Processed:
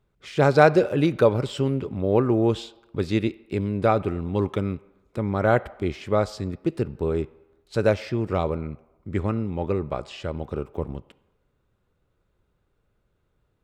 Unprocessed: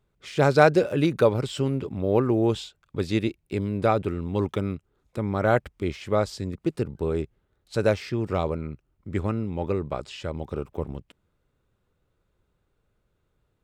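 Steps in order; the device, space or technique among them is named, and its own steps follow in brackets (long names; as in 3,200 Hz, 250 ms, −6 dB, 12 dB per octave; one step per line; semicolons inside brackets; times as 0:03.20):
filtered reverb send (on a send: high-pass filter 470 Hz 6 dB per octave + low-pass filter 5,100 Hz + convolution reverb RT60 1.1 s, pre-delay 4 ms, DRR 17 dB)
on the sum: high-shelf EQ 4,700 Hz −5.5 dB
level +1.5 dB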